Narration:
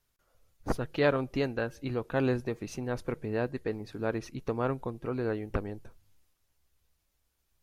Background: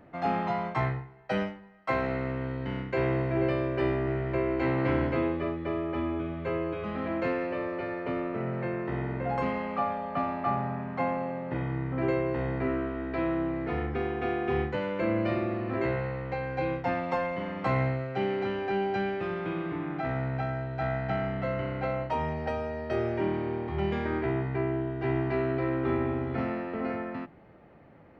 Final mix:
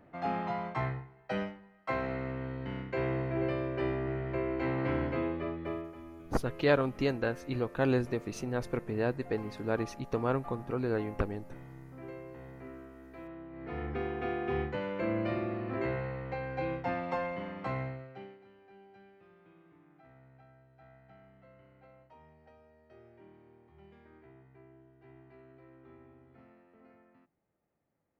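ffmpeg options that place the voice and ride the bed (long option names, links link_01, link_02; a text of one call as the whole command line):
ffmpeg -i stem1.wav -i stem2.wav -filter_complex "[0:a]adelay=5650,volume=0dB[link_01];[1:a]volume=8dB,afade=type=out:start_time=5.71:duration=0.23:silence=0.237137,afade=type=in:start_time=13.5:duration=0.42:silence=0.223872,afade=type=out:start_time=17.29:duration=1.1:silence=0.0668344[link_02];[link_01][link_02]amix=inputs=2:normalize=0" out.wav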